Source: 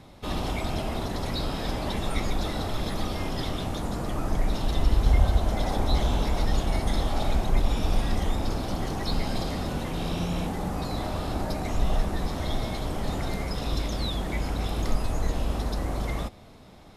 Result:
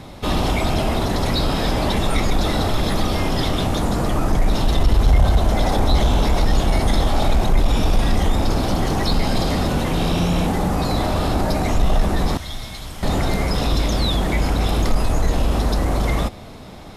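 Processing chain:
0:12.37–0:13.03: guitar amp tone stack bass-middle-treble 5-5-5
in parallel at 0 dB: brickwall limiter −24.5 dBFS, peak gain reduction 15 dB
on the sum: soft clipping −11.5 dBFS, distortion −22 dB
level +6 dB

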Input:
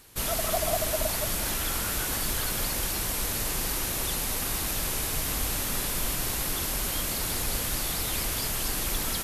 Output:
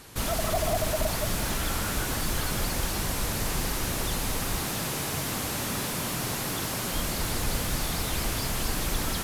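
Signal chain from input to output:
0:04.61–0:06.92: high-pass filter 100 Hz 24 dB per octave
mid-hump overdrive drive 22 dB, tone 1,100 Hz, clips at −13.5 dBFS
bass and treble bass +12 dB, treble +8 dB
level −3.5 dB

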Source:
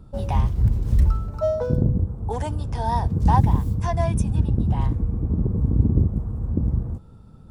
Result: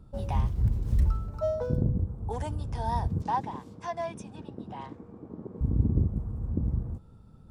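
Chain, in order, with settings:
0:03.22–0:05.61: band-pass filter 340–6,100 Hz
level −6.5 dB

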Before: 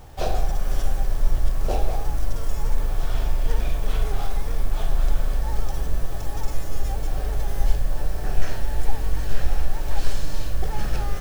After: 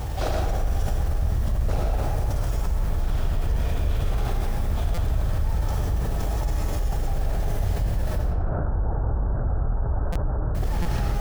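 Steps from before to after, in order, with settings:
wave folding −17.5 dBFS
high-pass filter 54 Hz 12 dB per octave
low-shelf EQ 97 Hz +12 dB
0:08.18–0:10.55: Butterworth low-pass 1,500 Hz 72 dB per octave
convolution reverb RT60 1.5 s, pre-delay 63 ms, DRR −1 dB
buffer that repeats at 0:04.94/0:10.12/0:10.82, samples 256, times 5
envelope flattener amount 70%
level −9 dB

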